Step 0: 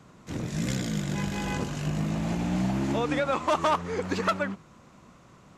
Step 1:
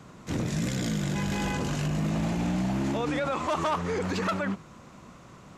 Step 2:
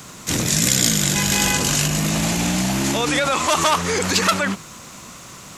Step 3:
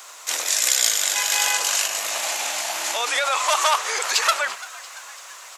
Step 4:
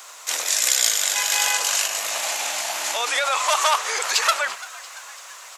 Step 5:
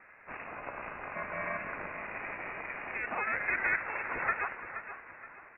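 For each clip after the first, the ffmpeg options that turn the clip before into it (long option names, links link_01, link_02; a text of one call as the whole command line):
ffmpeg -i in.wav -af "alimiter=level_in=1.5dB:limit=-24dB:level=0:latency=1:release=22,volume=-1.5dB,volume=4.5dB" out.wav
ffmpeg -i in.wav -af "crystalizer=i=7.5:c=0,volume=5.5dB" out.wav
ffmpeg -i in.wav -filter_complex "[0:a]highpass=frequency=610:width=0.5412,highpass=frequency=610:width=1.3066,asplit=6[link_01][link_02][link_03][link_04][link_05][link_06];[link_02]adelay=340,afreqshift=120,volume=-19dB[link_07];[link_03]adelay=680,afreqshift=240,volume=-23.3dB[link_08];[link_04]adelay=1020,afreqshift=360,volume=-27.6dB[link_09];[link_05]adelay=1360,afreqshift=480,volume=-31.9dB[link_10];[link_06]adelay=1700,afreqshift=600,volume=-36.2dB[link_11];[link_01][link_07][link_08][link_09][link_10][link_11]amix=inputs=6:normalize=0,volume=-1dB" out.wav
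ffmpeg -i in.wav -af "equalizer=frequency=340:width=6.2:gain=-4.5" out.wav
ffmpeg -i in.wav -af "aeval=exprs='val(0)*sin(2*PI*210*n/s)':channel_layout=same,aecho=1:1:474|948|1422|1896:0.282|0.0986|0.0345|0.0121,lowpass=frequency=2500:width_type=q:width=0.5098,lowpass=frequency=2500:width_type=q:width=0.6013,lowpass=frequency=2500:width_type=q:width=0.9,lowpass=frequency=2500:width_type=q:width=2.563,afreqshift=-2900,volume=-7dB" out.wav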